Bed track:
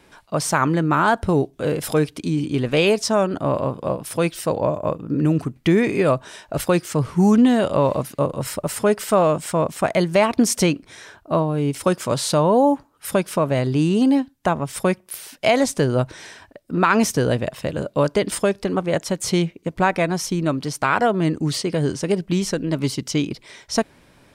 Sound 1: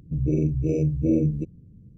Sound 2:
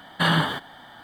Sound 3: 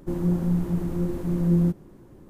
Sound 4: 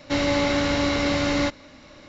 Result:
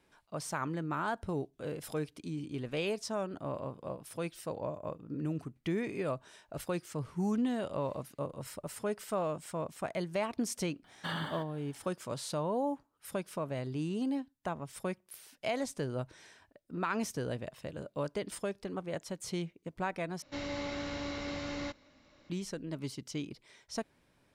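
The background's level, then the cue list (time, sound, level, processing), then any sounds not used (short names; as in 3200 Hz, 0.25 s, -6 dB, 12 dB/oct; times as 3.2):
bed track -17 dB
10.84 add 2 -16.5 dB
20.22 replace with 4 -16 dB
not used: 1, 3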